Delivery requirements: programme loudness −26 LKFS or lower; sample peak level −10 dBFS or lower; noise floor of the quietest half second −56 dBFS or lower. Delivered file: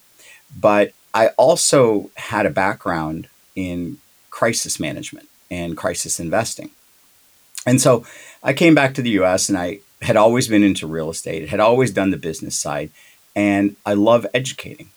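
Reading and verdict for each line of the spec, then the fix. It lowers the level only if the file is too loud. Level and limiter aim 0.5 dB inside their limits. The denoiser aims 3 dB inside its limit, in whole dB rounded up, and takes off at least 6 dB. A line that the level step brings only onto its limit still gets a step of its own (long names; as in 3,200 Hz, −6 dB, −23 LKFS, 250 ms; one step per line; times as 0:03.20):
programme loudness −18.0 LKFS: out of spec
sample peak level −2.0 dBFS: out of spec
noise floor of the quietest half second −54 dBFS: out of spec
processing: level −8.5 dB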